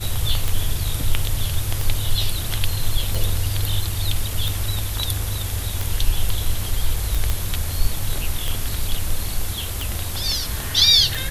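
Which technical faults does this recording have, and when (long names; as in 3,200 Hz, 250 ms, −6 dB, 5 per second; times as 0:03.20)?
scratch tick 45 rpm
0:07.30: click −8 dBFS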